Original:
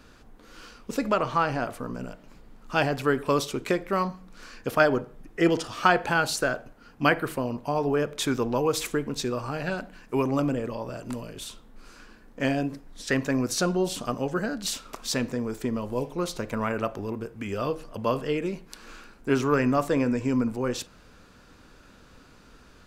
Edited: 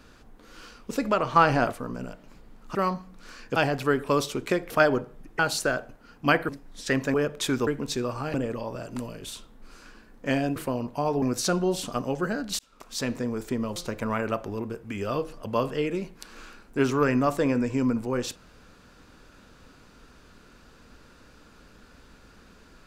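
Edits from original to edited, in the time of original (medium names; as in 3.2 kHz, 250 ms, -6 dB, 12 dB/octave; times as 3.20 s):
1.36–1.72 s: gain +5.5 dB
3.89–4.70 s: move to 2.75 s
5.39–6.16 s: delete
7.26–7.92 s: swap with 12.70–13.35 s
8.45–8.95 s: delete
9.62–10.48 s: delete
14.72–15.29 s: fade in
15.89–16.27 s: delete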